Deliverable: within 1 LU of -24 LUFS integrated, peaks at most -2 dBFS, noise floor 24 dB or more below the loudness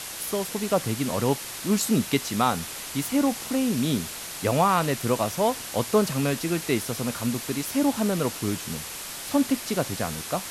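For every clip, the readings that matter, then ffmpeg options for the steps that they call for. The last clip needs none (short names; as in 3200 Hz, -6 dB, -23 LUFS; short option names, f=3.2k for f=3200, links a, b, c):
noise floor -37 dBFS; noise floor target -50 dBFS; loudness -26.0 LUFS; peak -9.5 dBFS; loudness target -24.0 LUFS
-> -af "afftdn=nr=13:nf=-37"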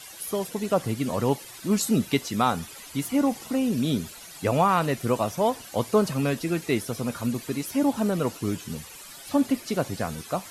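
noise floor -44 dBFS; noise floor target -51 dBFS
-> -af "afftdn=nr=7:nf=-44"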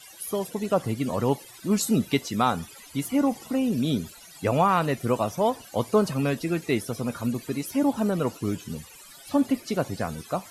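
noise floor -48 dBFS; noise floor target -51 dBFS
-> -af "afftdn=nr=6:nf=-48"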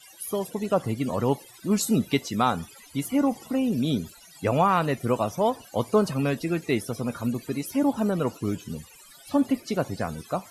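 noise floor -51 dBFS; loudness -26.5 LUFS; peak -10.0 dBFS; loudness target -24.0 LUFS
-> -af "volume=2.5dB"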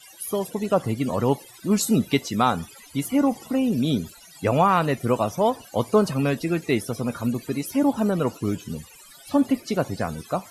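loudness -24.0 LUFS; peak -7.5 dBFS; noise floor -48 dBFS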